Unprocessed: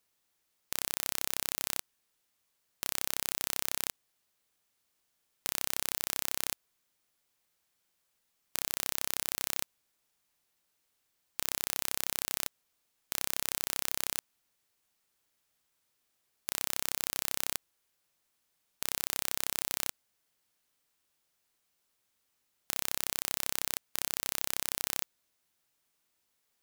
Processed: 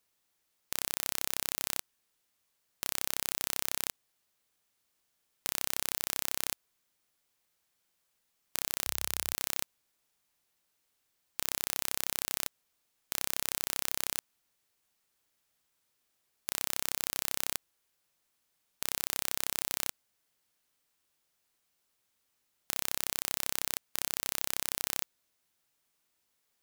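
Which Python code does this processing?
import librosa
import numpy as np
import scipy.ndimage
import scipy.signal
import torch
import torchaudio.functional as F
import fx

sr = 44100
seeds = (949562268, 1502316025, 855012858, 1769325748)

y = fx.peak_eq(x, sr, hz=72.0, db=6.0, octaves=0.77, at=(8.86, 9.33))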